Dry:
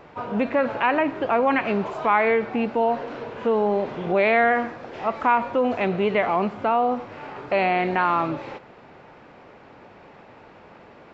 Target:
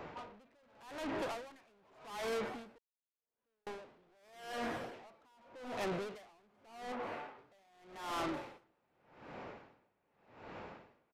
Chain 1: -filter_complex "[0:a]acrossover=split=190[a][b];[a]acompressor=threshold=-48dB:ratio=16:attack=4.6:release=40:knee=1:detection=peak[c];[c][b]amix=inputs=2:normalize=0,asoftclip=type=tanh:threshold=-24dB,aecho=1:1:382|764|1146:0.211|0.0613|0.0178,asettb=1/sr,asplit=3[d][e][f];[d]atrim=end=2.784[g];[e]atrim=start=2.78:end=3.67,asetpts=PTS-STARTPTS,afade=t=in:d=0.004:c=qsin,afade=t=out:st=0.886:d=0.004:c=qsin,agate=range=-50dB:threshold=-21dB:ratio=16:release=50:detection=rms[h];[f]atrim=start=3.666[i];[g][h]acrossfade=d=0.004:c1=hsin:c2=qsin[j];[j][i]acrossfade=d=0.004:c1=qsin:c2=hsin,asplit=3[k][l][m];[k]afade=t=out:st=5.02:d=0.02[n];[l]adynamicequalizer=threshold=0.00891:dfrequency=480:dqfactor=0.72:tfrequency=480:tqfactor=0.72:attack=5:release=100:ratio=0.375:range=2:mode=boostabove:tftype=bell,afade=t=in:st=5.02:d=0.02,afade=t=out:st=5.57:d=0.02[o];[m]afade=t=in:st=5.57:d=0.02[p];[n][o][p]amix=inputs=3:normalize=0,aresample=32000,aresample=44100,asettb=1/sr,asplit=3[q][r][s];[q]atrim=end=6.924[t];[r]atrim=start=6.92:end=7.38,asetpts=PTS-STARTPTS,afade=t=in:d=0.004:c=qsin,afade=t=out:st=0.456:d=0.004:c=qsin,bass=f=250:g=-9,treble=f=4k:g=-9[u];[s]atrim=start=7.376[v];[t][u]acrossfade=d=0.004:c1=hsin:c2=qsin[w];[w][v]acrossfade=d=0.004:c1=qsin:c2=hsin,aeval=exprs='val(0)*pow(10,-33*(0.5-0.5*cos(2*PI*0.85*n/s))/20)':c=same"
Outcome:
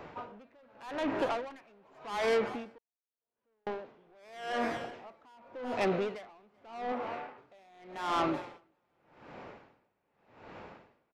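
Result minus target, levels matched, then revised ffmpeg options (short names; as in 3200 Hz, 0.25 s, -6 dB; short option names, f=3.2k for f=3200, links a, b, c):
soft clip: distortion -5 dB
-filter_complex "[0:a]acrossover=split=190[a][b];[a]acompressor=threshold=-48dB:ratio=16:attack=4.6:release=40:knee=1:detection=peak[c];[c][b]amix=inputs=2:normalize=0,asoftclip=type=tanh:threshold=-35dB,aecho=1:1:382|764|1146:0.211|0.0613|0.0178,asettb=1/sr,asplit=3[d][e][f];[d]atrim=end=2.784[g];[e]atrim=start=2.78:end=3.67,asetpts=PTS-STARTPTS,afade=t=in:d=0.004:c=qsin,afade=t=out:st=0.886:d=0.004:c=qsin,agate=range=-50dB:threshold=-21dB:ratio=16:release=50:detection=rms[h];[f]atrim=start=3.666[i];[g][h]acrossfade=d=0.004:c1=hsin:c2=qsin[j];[j][i]acrossfade=d=0.004:c1=qsin:c2=hsin,asplit=3[k][l][m];[k]afade=t=out:st=5.02:d=0.02[n];[l]adynamicequalizer=threshold=0.00891:dfrequency=480:dqfactor=0.72:tfrequency=480:tqfactor=0.72:attack=5:release=100:ratio=0.375:range=2:mode=boostabove:tftype=bell,afade=t=in:st=5.02:d=0.02,afade=t=out:st=5.57:d=0.02[o];[m]afade=t=in:st=5.57:d=0.02[p];[n][o][p]amix=inputs=3:normalize=0,aresample=32000,aresample=44100,asettb=1/sr,asplit=3[q][r][s];[q]atrim=end=6.924[t];[r]atrim=start=6.92:end=7.38,asetpts=PTS-STARTPTS,afade=t=in:d=0.004:c=qsin,afade=t=out:st=0.456:d=0.004:c=qsin,bass=f=250:g=-9,treble=f=4k:g=-9[u];[s]atrim=start=7.376[v];[t][u]acrossfade=d=0.004:c1=hsin:c2=qsin[w];[w][v]acrossfade=d=0.004:c1=qsin:c2=hsin,aeval=exprs='val(0)*pow(10,-33*(0.5-0.5*cos(2*PI*0.85*n/s))/20)':c=same"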